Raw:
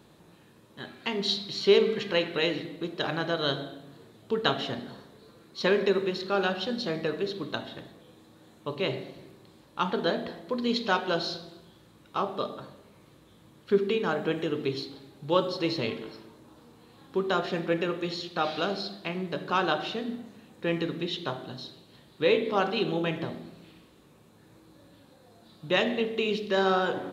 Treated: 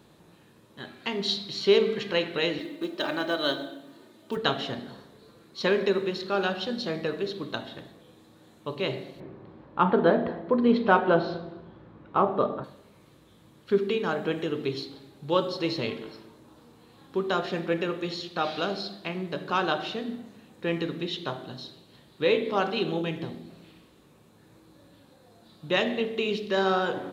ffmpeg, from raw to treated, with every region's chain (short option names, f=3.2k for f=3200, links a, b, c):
-filter_complex "[0:a]asettb=1/sr,asplit=3[a][b][c];[a]atrim=end=2.594[d];[b]atrim=start=2.59:end=4.37,asetpts=PTS-STARTPTS,afade=t=in:d=0.004:c=qsin,afade=t=out:st=1.776:d=0.004:c=qsin,highpass=170,acrusher=bits=8:mode=log:mix=0:aa=0.000001,aecho=1:1:3.3:0.54,atrim=end_sample=78498[e];[c]atrim=start=4.366[f];[d][e]acrossfade=d=0.004:c1=hsin:c2=qsin[g];[g][f]acrossfade=d=0.004:c1=qsin:c2=hsin,asettb=1/sr,asplit=3[h][i][j];[h]atrim=end=9.204[k];[i]atrim=start=9.2:end=12.64,asetpts=PTS-STARTPTS,afade=t=in:d=0.004:c=qsin,afade=t=out:st=3.436:d=0.004:c=qsin,lowpass=1.5k,acontrast=88[l];[j]atrim=start=12.636[m];[k][l]acrossfade=d=0.004:c1=hsin:c2=qsin[n];[n][m]acrossfade=d=0.004:c1=qsin:c2=hsin,asettb=1/sr,asplit=3[o][p][q];[o]atrim=end=23.014[r];[p]atrim=start=23.01:end=23.5,asetpts=PTS-STARTPTS,afade=t=in:d=0.004:c=qsin,afade=t=out:st=0.486:d=0.004:c=qsin,equalizer=f=1.3k:t=o:w=1.5:g=-6.5,bandreject=f=610:w=5.4[s];[q]atrim=start=23.496[t];[r][s]acrossfade=d=0.004:c1=hsin:c2=qsin[u];[u][t]acrossfade=d=0.004:c1=qsin:c2=hsin"